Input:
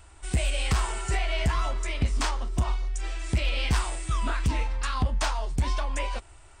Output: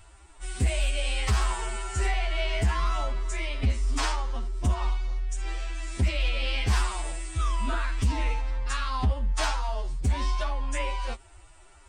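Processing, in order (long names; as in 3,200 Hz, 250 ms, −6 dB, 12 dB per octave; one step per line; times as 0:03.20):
phase-vocoder stretch with locked phases 1.8×
highs frequency-modulated by the lows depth 0.12 ms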